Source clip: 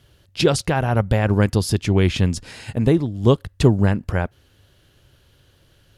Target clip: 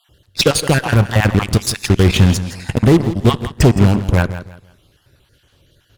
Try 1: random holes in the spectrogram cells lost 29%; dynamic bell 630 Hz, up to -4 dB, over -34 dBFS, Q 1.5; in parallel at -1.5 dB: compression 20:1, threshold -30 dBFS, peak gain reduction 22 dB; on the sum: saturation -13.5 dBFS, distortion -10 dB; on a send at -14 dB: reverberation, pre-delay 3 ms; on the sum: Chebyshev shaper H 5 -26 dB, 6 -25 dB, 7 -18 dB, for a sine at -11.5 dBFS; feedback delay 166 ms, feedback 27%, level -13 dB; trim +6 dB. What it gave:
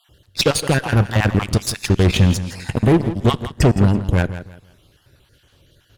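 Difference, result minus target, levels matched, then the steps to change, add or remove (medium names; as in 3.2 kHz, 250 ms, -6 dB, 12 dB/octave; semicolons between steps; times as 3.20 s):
compression: peak gain reduction +8 dB; saturation: distortion +10 dB
change: compression 20:1, threshold -21.5 dBFS, peak gain reduction 14 dB; change: saturation -4 dBFS, distortion -20 dB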